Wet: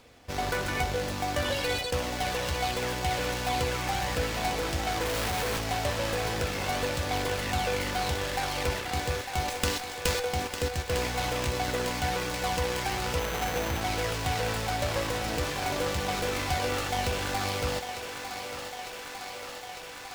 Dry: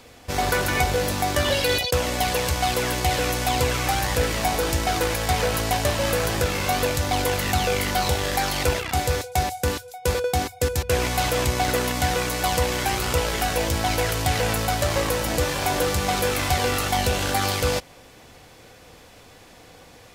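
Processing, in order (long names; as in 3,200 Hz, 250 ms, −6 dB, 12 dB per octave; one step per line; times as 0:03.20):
0:09.48–0:10.25: high-shelf EQ 2,100 Hz +10.5 dB
feedback echo with a high-pass in the loop 902 ms, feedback 80%, high-pass 290 Hz, level −8 dB
0:05.05–0:05.58: comparator with hysteresis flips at −34 dBFS
0:13.19–0:13.81: sample-rate reduction 6,100 Hz, jitter 0%
windowed peak hold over 3 samples
level −7.5 dB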